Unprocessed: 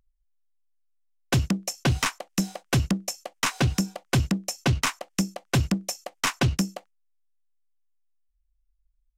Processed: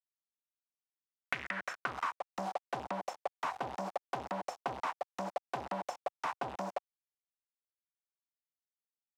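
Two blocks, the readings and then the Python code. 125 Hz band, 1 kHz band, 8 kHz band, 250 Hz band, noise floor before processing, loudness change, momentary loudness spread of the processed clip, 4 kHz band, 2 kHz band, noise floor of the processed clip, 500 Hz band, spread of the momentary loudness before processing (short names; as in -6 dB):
-27.5 dB, -2.5 dB, -24.5 dB, -20.0 dB, -71 dBFS, -12.5 dB, 3 LU, -19.5 dB, -10.0 dB, under -85 dBFS, -5.5 dB, 5 LU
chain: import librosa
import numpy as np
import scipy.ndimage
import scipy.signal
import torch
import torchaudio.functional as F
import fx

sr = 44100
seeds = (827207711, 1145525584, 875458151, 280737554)

y = fx.quant_companded(x, sr, bits=2)
y = fx.filter_sweep_bandpass(y, sr, from_hz=2500.0, to_hz=830.0, start_s=1.19, end_s=2.31, q=3.1)
y = fx.band_squash(y, sr, depth_pct=100)
y = F.gain(torch.from_numpy(y), 2.5).numpy()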